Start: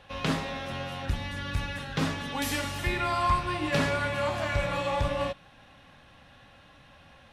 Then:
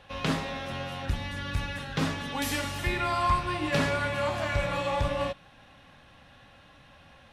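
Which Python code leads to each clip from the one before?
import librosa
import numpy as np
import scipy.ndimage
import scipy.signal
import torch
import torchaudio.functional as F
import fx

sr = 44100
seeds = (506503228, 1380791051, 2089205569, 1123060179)

y = x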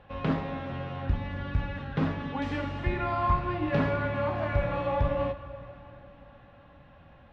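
y = fx.spacing_loss(x, sr, db_at_10k=41)
y = fx.rev_plate(y, sr, seeds[0], rt60_s=4.1, hf_ratio=0.8, predelay_ms=0, drr_db=12.0)
y = y * librosa.db_to_amplitude(2.5)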